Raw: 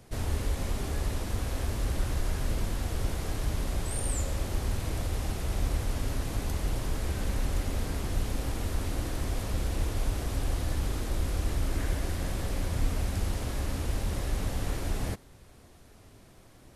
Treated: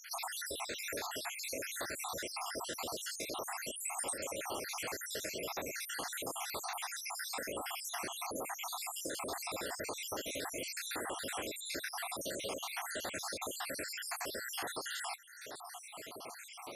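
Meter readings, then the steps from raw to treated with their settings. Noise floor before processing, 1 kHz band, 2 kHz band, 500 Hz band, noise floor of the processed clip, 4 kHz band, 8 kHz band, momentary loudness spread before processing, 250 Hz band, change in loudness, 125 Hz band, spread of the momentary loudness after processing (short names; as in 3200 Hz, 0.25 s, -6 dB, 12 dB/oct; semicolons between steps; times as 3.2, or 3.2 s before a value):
-55 dBFS, 0.0 dB, +1.0 dB, -3.5 dB, -50 dBFS, +1.0 dB, +1.0 dB, 2 LU, -12.0 dB, -6.5 dB, -28.5 dB, 1 LU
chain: random spectral dropouts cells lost 71%; HPF 530 Hz 12 dB/oct; compressor 3:1, threshold -60 dBFS, peak gain reduction 17.5 dB; gain +18 dB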